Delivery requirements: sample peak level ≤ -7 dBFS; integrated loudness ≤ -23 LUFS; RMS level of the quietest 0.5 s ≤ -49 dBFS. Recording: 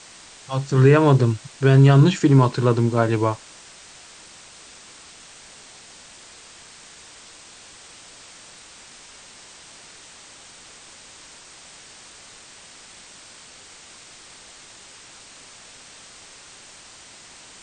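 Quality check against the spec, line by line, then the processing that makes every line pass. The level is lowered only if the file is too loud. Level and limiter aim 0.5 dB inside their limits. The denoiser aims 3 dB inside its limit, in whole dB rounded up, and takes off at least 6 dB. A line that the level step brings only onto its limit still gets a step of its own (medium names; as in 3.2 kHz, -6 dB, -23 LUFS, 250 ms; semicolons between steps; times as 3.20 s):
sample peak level -4.0 dBFS: fail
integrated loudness -17.5 LUFS: fail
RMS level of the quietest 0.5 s -45 dBFS: fail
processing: trim -6 dB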